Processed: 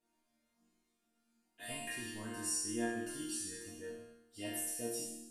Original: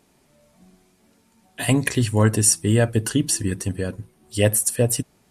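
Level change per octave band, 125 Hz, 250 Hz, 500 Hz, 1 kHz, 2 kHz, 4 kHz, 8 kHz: -33.5, -19.0, -20.5, -16.0, -15.5, -16.0, -17.5 dB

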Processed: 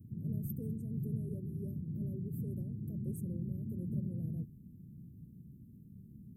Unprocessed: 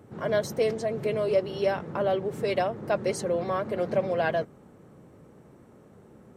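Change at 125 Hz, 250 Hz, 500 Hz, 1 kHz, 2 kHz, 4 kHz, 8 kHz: +1.5 dB, -4.0 dB, -27.0 dB, under -40 dB, under -40 dB, under -40 dB, -19.0 dB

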